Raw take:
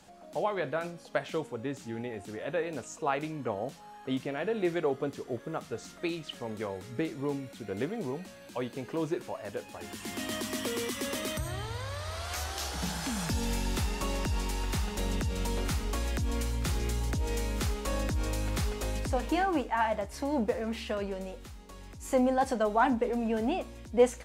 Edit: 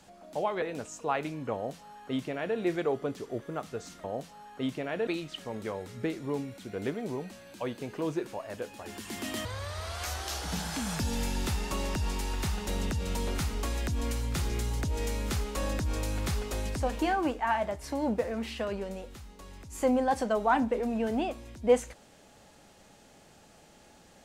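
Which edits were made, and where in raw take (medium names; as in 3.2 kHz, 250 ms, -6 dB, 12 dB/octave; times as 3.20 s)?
0.62–2.60 s: delete
3.52–4.55 s: copy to 6.02 s
10.40–11.75 s: delete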